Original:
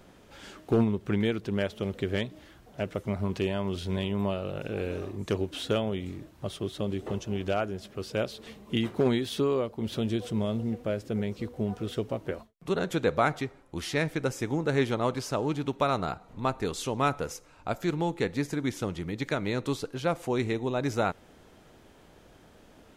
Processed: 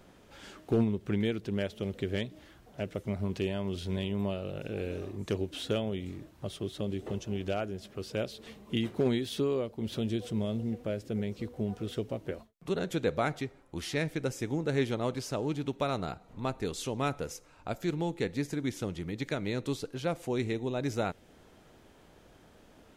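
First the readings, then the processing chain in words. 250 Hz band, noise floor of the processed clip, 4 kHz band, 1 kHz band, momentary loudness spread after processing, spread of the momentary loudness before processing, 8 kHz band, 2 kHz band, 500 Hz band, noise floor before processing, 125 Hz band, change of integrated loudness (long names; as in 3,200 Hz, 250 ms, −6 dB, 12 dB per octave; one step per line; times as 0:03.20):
−2.5 dB, −59 dBFS, −3.0 dB, −6.5 dB, 9 LU, 9 LU, −2.5 dB, −5.0 dB, −3.5 dB, −56 dBFS, −2.5 dB, −3.5 dB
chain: dynamic equaliser 1,100 Hz, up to −6 dB, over −46 dBFS, Q 1.2
level −2.5 dB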